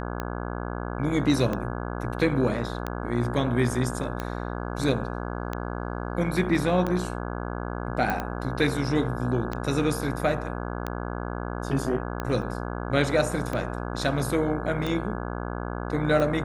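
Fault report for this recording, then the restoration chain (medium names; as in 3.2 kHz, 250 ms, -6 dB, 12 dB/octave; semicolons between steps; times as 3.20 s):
buzz 60 Hz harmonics 28 -32 dBFS
tick 45 rpm -16 dBFS
8.10 s: pop -13 dBFS
12.42 s: dropout 2.1 ms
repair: de-click; de-hum 60 Hz, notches 28; interpolate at 12.42 s, 2.1 ms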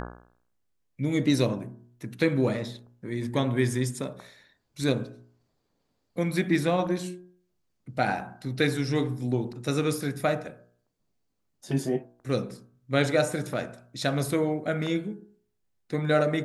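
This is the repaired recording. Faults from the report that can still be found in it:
nothing left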